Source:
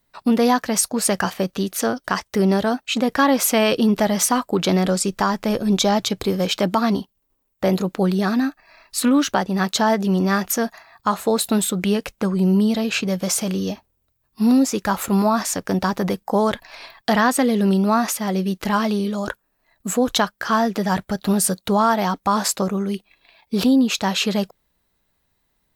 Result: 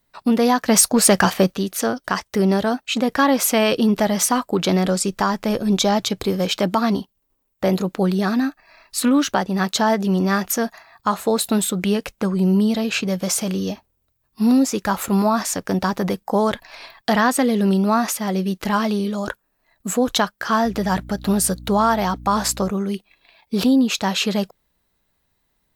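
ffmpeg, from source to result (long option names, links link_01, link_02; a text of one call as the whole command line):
ffmpeg -i in.wav -filter_complex "[0:a]asettb=1/sr,asplit=3[link_01][link_02][link_03];[link_01]atrim=end=0.684[link_04];[link_02]atrim=start=0.68:end=1.53,asetpts=PTS-STARTPTS,afade=type=in:duration=0.004:curve=qsin,afade=type=out:start_time=0.846:duration=0.004:curve=qsin,aeval=exprs='0.501*sin(PI/2*1.41*val(0)/0.501)':channel_layout=same[link_05];[link_03]atrim=start=1.526[link_06];[link_04][link_05]acrossfade=duration=0.004:curve1=hsin:curve2=qsin[link_07];[link_07][link_06]acrossfade=duration=0.004:curve1=qsin:curve2=hsin,asettb=1/sr,asplit=3[link_08][link_09][link_10];[link_08]atrim=end=20.654[link_11];[link_09]atrim=start=20.65:end=22.71,asetpts=PTS-STARTPTS,afade=type=in:duration=0.004:curve=qsin,afade=type=out:start_time=2.056:duration=0.004:curve=qsin,aeval=exprs='val(0)+0.0158*(sin(2*PI*60*n/s)+sin(2*PI*2*60*n/s)/2+sin(2*PI*3*60*n/s)/3+sin(2*PI*4*60*n/s)/4+sin(2*PI*5*60*n/s)/5)':channel_layout=same[link_12];[link_10]atrim=start=22.706[link_13];[link_11][link_12]acrossfade=duration=0.004:curve1=hsin:curve2=qsin[link_14];[link_14][link_13]acrossfade=duration=0.004:curve1=qsin:curve2=hsin" out.wav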